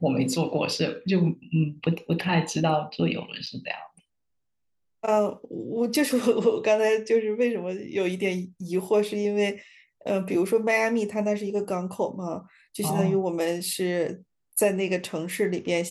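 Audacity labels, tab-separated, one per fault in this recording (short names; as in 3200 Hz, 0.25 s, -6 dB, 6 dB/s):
3.460000	3.470000	gap 6.8 ms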